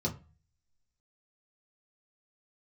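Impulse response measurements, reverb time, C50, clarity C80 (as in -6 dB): 0.35 s, 15.0 dB, 20.5 dB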